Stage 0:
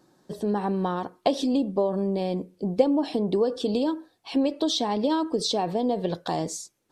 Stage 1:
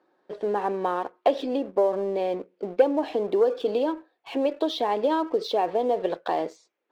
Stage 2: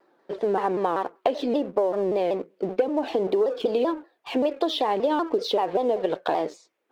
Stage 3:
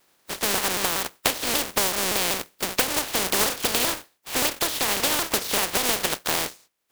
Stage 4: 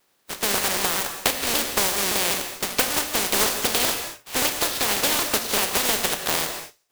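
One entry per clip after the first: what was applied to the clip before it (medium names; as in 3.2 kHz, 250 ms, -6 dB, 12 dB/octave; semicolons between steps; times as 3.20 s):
Chebyshev band-pass 430–2400 Hz, order 2; waveshaping leveller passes 1
compression 5:1, threshold -24 dBFS, peak gain reduction 10.5 dB; vibrato with a chosen wave saw down 5.2 Hz, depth 160 cents; trim +4.5 dB
spectral contrast reduction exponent 0.21
in parallel at -4.5 dB: bit crusher 4-bit; on the sum: gated-style reverb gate 250 ms flat, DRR 5.5 dB; trim -3.5 dB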